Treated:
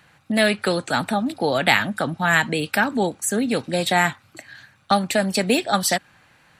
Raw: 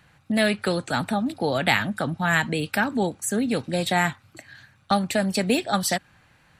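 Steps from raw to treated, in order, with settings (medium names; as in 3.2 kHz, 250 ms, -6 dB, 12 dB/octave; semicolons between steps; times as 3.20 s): bass shelf 130 Hz -10.5 dB; trim +4 dB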